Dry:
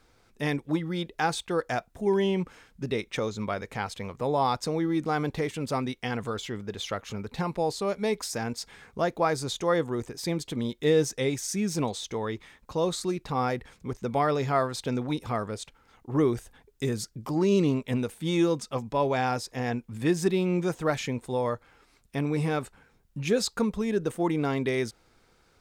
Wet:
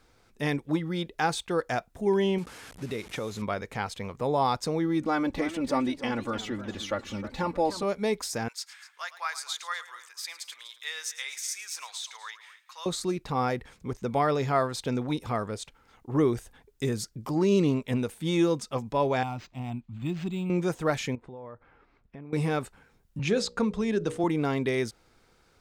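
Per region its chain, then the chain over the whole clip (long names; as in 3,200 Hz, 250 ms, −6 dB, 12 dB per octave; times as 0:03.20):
0:02.38–0:03.42: linear delta modulator 64 kbit/s, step −40 dBFS + high-pass filter 50 Hz + downward compressor 2 to 1, threshold −32 dBFS
0:05.02–0:07.83: high-shelf EQ 4,200 Hz −6 dB + comb filter 3.5 ms, depth 79% + feedback echo with a swinging delay time 305 ms, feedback 38%, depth 206 cents, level −13 dB
0:08.48–0:12.86: high-pass filter 1,200 Hz 24 dB per octave + multi-tap delay 108/247 ms −15/−16.5 dB
0:19.23–0:20.50: parametric band 1,300 Hz −7.5 dB 2.4 octaves + phaser with its sweep stopped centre 1,700 Hz, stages 6 + linearly interpolated sample-rate reduction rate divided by 4×
0:21.15–0:22.33: low-pass filter 1,900 Hz + downward compressor 4 to 1, threshold −42 dBFS
0:23.19–0:24.24: low-pass filter 7,000 Hz + mains-hum notches 60/120/180/240/300/360/420/480/540/600 Hz + multiband upward and downward compressor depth 40%
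whole clip: no processing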